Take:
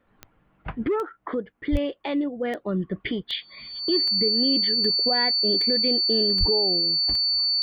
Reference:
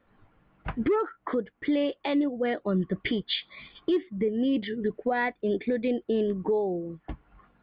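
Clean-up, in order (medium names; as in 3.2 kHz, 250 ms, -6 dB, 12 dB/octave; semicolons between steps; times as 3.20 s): de-click; band-stop 4.5 kHz, Q 30; de-plosive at 1.71/6.39 s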